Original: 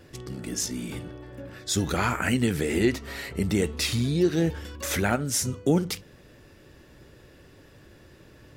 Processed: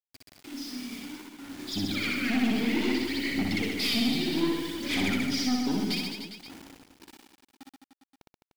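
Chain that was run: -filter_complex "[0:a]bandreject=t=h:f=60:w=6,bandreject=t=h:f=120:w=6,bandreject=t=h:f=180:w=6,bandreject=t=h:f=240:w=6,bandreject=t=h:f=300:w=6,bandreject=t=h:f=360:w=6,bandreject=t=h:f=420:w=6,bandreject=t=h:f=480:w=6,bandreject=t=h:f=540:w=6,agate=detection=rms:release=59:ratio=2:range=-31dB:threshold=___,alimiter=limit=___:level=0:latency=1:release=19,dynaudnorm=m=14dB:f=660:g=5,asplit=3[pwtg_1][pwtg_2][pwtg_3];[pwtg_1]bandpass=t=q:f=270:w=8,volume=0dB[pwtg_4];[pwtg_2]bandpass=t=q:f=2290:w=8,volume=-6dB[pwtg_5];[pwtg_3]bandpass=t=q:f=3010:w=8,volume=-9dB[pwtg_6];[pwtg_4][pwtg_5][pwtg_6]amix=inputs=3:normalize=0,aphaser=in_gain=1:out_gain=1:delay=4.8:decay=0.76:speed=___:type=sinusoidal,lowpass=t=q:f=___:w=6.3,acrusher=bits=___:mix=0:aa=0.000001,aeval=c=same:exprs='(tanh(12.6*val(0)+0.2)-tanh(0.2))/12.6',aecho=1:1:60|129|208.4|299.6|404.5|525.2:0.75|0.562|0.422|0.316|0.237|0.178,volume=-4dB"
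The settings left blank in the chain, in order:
-49dB, -15.5dB, 0.61, 4800, 6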